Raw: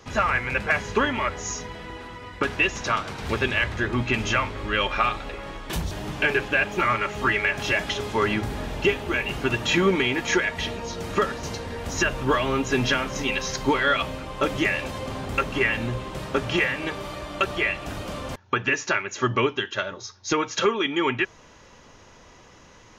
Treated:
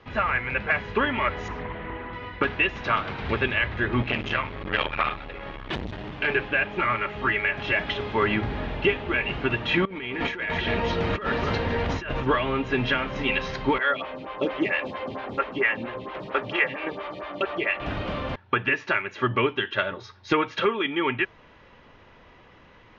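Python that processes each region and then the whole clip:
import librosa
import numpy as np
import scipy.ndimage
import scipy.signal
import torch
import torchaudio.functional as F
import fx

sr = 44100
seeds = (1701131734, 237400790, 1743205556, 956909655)

y = fx.chain(x, sr, fx.lowpass(hz=2200.0, slope=12),
    fx.doppler_dist(depth_ms=0.28), at=(1.48, 2.13))
y = fx.chain(y, sr, fx.high_shelf(hz=9300.0, db=9.5),
    fx.tremolo(hz=1.2, depth=0.38),
    fx.transformer_sat(knee_hz=1100.0), at=(4.02, 6.28))
y = fx.chain(y, sr, fx.echo_single(ms=255, db=-15.0),
    fx.over_compress(threshold_db=-31.0, ratio=-1.0), at=(9.85, 12.26))
y = fx.chain(y, sr, fx.highpass(hz=250.0, slope=6),
    fx.stagger_phaser(hz=4.4), at=(13.78, 17.8))
y = scipy.signal.sosfilt(scipy.signal.butter(4, 3600.0, 'lowpass', fs=sr, output='sos'), y)
y = fx.peak_eq(y, sr, hz=2000.0, db=2.0, octaves=0.77)
y = fx.rider(y, sr, range_db=3, speed_s=0.5)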